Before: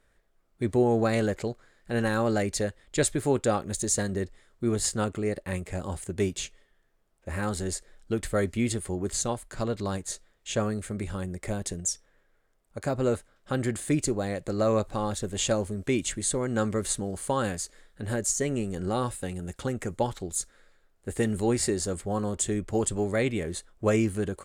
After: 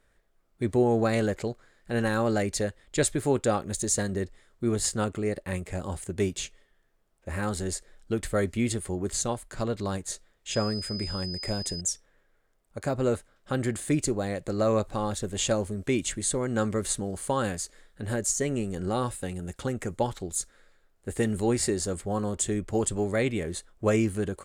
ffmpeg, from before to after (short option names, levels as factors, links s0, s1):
-filter_complex "[0:a]asettb=1/sr,asplit=3[s0][s1][s2];[s0]atrim=end=10.514[s3];[s1]atrim=start=10.51:end=11.81,asetpts=PTS-STARTPTS,afade=t=in:d=0.004:c=qsin,afade=t=out:st=1.296:d=0.004:c=qsin,aeval=exprs='val(0)+0.0178*sin(2*PI*5000*n/s)':c=same[s4];[s2]atrim=start=11.806[s5];[s3][s4]acrossfade=d=0.004:c1=hsin:c2=qsin[s6];[s6][s5]acrossfade=d=0.004:c1=qsin:c2=hsin"